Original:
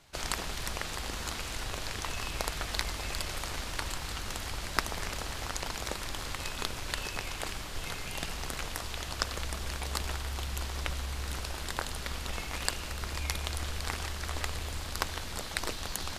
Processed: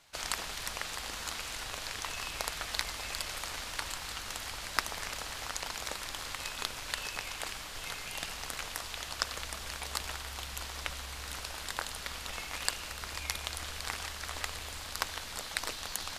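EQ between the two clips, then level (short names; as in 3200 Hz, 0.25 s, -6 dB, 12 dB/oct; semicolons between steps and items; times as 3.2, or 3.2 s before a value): low shelf 450 Hz -10.5 dB; notch 370 Hz, Q 12; 0.0 dB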